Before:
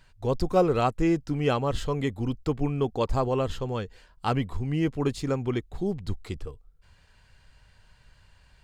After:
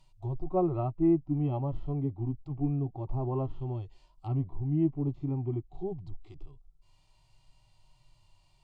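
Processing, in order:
phaser with its sweep stopped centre 320 Hz, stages 8
treble cut that deepens with the level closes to 1,200 Hz, closed at −27 dBFS
harmonic and percussive parts rebalanced percussive −18 dB

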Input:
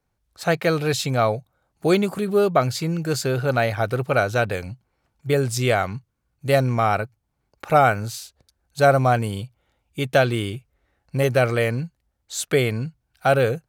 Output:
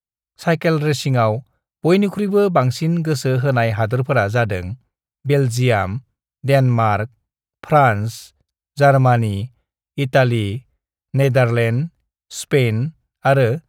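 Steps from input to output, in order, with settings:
downward expander −46 dBFS
bass and treble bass +5 dB, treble −4 dB
level +2.5 dB

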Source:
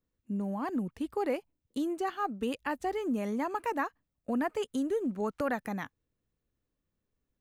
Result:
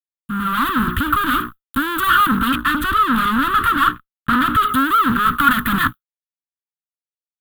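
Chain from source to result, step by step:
comb filter 2.8 ms, depth 84%
soft clipping −32 dBFS, distortion −9 dB
mains-hum notches 60/120/180/240/300/360/420 Hz
fuzz pedal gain 54 dB, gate −60 dBFS
noise that follows the level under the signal 27 dB
0:02.47–0:04.67: high-shelf EQ 11,000 Hz −8 dB
automatic gain control gain up to 11.5 dB
drawn EQ curve 170 Hz 0 dB, 270 Hz −5 dB, 470 Hz −30 dB, 790 Hz −28 dB, 1,300 Hz +12 dB, 2,200 Hz −14 dB, 3,400 Hz −1 dB, 5,500 Hz −28 dB, 13,000 Hz +4 dB
highs frequency-modulated by the lows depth 0.17 ms
level −7.5 dB

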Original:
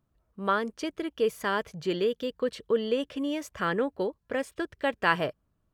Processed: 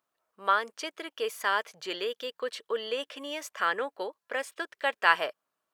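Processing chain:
high-pass filter 740 Hz 12 dB per octave
level +3 dB

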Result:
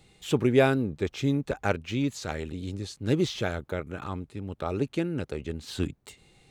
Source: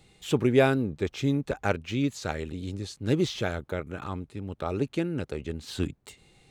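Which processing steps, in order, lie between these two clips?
0:01.96–0:02.47: transient designer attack −5 dB, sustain +1 dB

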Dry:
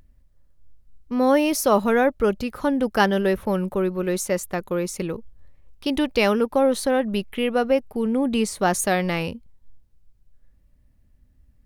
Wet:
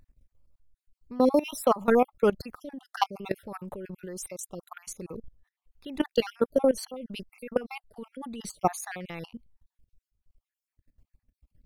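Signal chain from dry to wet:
time-frequency cells dropped at random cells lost 46%
output level in coarse steps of 19 dB

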